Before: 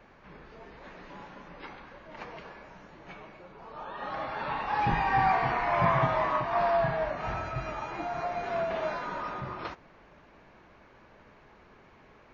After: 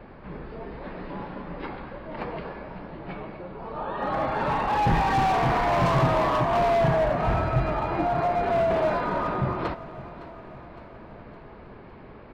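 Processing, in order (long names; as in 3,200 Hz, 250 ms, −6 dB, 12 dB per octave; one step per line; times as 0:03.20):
downsampling to 11,025 Hz
hard clipping −29.5 dBFS, distortion −7 dB
tilt shelving filter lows +6 dB
repeating echo 561 ms, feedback 57%, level −16.5 dB
level +8 dB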